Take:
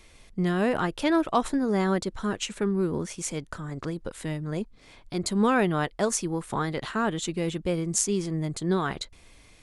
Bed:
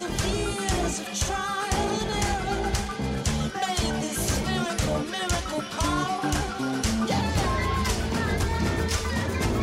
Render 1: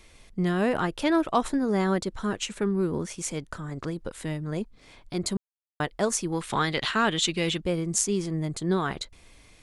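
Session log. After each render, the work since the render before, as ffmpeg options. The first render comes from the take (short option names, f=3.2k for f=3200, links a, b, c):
-filter_complex "[0:a]asettb=1/sr,asplit=3[a][b][c];[a]atrim=end=6.324[d];[b]atrim=start=6.32:end=7.61,asetpts=PTS-STARTPTS,afade=t=in:d=0.004:c=qsin,afade=t=out:st=1.286:d=0.004:c=qsin,equalizer=f=3.3k:w=0.57:g=11.5[e];[c]atrim=start=7.606[f];[d][e]acrossfade=d=0.004:c1=hsin:c2=qsin[g];[g][f]acrossfade=d=0.004:c1=qsin:c2=hsin,asplit=3[h][i][j];[h]atrim=end=5.37,asetpts=PTS-STARTPTS,afade=t=out:st=5.366:d=0.004:c=hsin[k];[i]atrim=start=5.37:end=5.8,asetpts=PTS-STARTPTS,volume=0[l];[j]atrim=start=5.8,asetpts=PTS-STARTPTS,afade=t=in:d=0.004:c=hsin[m];[k][l][m]concat=n=3:v=0:a=1"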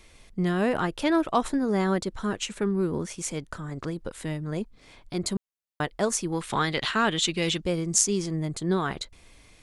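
-filter_complex "[0:a]asettb=1/sr,asplit=3[a][b][c];[a]atrim=end=7.424[d];[b]atrim=start=7.42:end=8.36,asetpts=PTS-STARTPTS,afade=t=in:d=0.004:c=qsin,afade=t=out:st=0.936:d=0.004:c=qsin,equalizer=f=5.8k:w=1.2:g=5.5[e];[c]atrim=start=8.356[f];[d][e]acrossfade=d=0.004:c1=hsin:c2=qsin[g];[g][f]acrossfade=d=0.004:c1=qsin:c2=hsin"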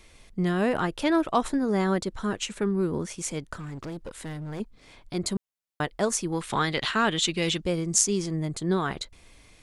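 -filter_complex "[0:a]asettb=1/sr,asplit=3[a][b][c];[a]atrim=end=3.544[d];[b]atrim=start=3.54:end=4.6,asetpts=PTS-STARTPTS,afade=t=in:d=0.004:c=qsin,afade=t=out:st=1.056:d=0.004:c=qsin,volume=32.5dB,asoftclip=hard,volume=-32.5dB[e];[c]atrim=start=4.596[f];[d][e]acrossfade=d=0.004:c1=hsin:c2=qsin[g];[g][f]acrossfade=d=0.004:c1=qsin:c2=hsin"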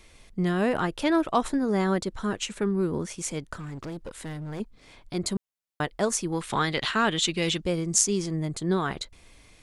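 -af anull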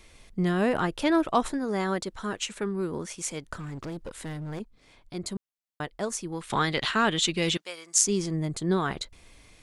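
-filter_complex "[0:a]asettb=1/sr,asplit=3[a][b][c];[a]atrim=end=1.534[d];[b]atrim=start=1.53:end=3.46,asetpts=PTS-STARTPTS,afade=t=in:d=0.004:c=qsin,afade=t=out:st=1.926:d=0.004:c=qsin,lowshelf=f=370:g=-7[e];[c]atrim=start=3.456[f];[d][e]acrossfade=d=0.004:c1=hsin:c2=qsin[g];[g][f]acrossfade=d=0.004:c1=qsin:c2=hsin,asettb=1/sr,asplit=3[h][i][j];[h]atrim=end=7.574[k];[i]atrim=start=7.57:end=8.05,asetpts=PTS-STARTPTS,afade=t=in:d=0.004:c=qsin,afade=t=out:st=0.476:d=0.004:c=qsin,highpass=1.1k[l];[j]atrim=start=8.046[m];[k][l]acrossfade=d=0.004:c1=hsin:c2=qsin[n];[n][m]acrossfade=d=0.004:c1=qsin:c2=hsin,asplit=3[o][p][q];[o]atrim=end=4.592[r];[p]atrim=start=4.588:end=6.502,asetpts=PTS-STARTPTS,volume=-5.5dB[s];[q]atrim=start=6.498[t];[r][s]acrossfade=d=0.004:c1=hsin:c2=hsin[u];[u][t]acrossfade=d=0.004:c1=hsin:c2=hsin"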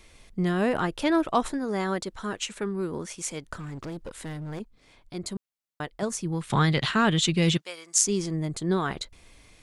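-filter_complex "[0:a]asettb=1/sr,asplit=3[a][b][c];[a]atrim=end=6.024[d];[b]atrim=start=6.02:end=7.63,asetpts=PTS-STARTPTS,afade=t=in:d=0.004:c=qsin,afade=t=out:st=1.606:d=0.004:c=qsin,equalizer=f=140:t=o:w=1.1:g=11.5[e];[c]atrim=start=7.626[f];[d][e]acrossfade=d=0.004:c1=hsin:c2=qsin[g];[g][f]acrossfade=d=0.004:c1=qsin:c2=hsin"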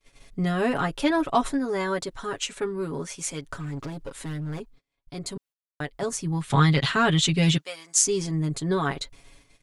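-af "agate=range=-32dB:threshold=-52dB:ratio=16:detection=peak,aecho=1:1:7.2:0.73"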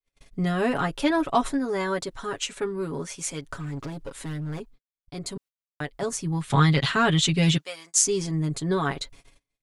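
-af "agate=range=-26dB:threshold=-48dB:ratio=16:detection=peak"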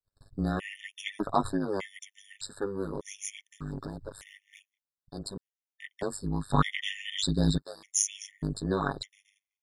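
-af "tremolo=f=100:d=0.974,afftfilt=real='re*gt(sin(2*PI*0.83*pts/sr)*(1-2*mod(floor(b*sr/1024/1800),2)),0)':imag='im*gt(sin(2*PI*0.83*pts/sr)*(1-2*mod(floor(b*sr/1024/1800),2)),0)':win_size=1024:overlap=0.75"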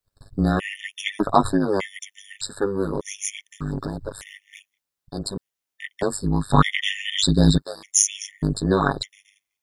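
-af "volume=9.5dB,alimiter=limit=-1dB:level=0:latency=1"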